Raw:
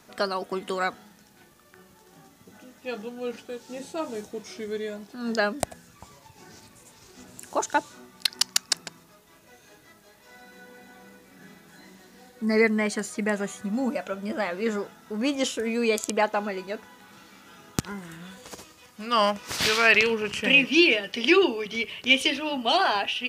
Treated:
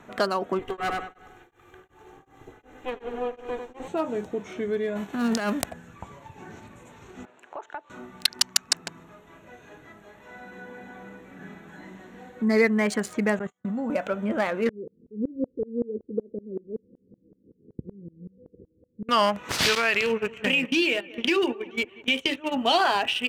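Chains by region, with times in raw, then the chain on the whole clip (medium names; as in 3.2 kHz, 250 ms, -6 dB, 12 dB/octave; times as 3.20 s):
0.59–3.88 s: comb filter that takes the minimum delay 2.5 ms + feedback delay 96 ms, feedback 44%, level -6 dB + tremolo of two beating tones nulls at 2.7 Hz
4.95–5.69 s: formants flattened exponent 0.6 + compressor with a negative ratio -29 dBFS
7.25–7.90 s: companding laws mixed up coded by A + three-band isolator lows -23 dB, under 360 Hz, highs -15 dB, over 4.1 kHz + compression 3:1, threshold -45 dBFS
13.39–13.90 s: gate -35 dBFS, range -31 dB + band-stop 2.5 kHz, Q 13 + level held to a coarse grid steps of 17 dB
14.69–19.09 s: steep low-pass 510 Hz 96 dB/octave + sawtooth tremolo in dB swelling 5.3 Hz, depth 27 dB
19.75–22.54 s: gate -29 dBFS, range -18 dB + compression 2.5:1, threshold -23 dBFS + feedback delay 184 ms, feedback 48%, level -22 dB
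whole clip: local Wiener filter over 9 samples; compression 1.5:1, threshold -35 dBFS; trim +7 dB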